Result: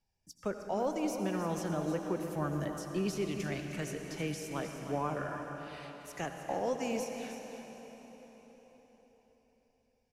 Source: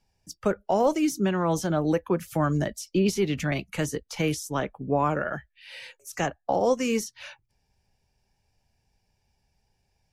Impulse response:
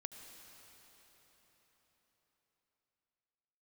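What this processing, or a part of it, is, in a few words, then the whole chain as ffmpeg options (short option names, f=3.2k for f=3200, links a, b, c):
cave: -filter_complex "[0:a]aecho=1:1:311:0.299[a];[1:a]atrim=start_sample=2205[b];[a][b]afir=irnorm=-1:irlink=0,volume=-6dB"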